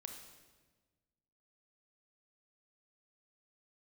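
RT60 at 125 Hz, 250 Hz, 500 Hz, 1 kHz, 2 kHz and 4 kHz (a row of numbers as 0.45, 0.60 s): 1.8, 1.7, 1.5, 1.2, 1.2, 1.1 s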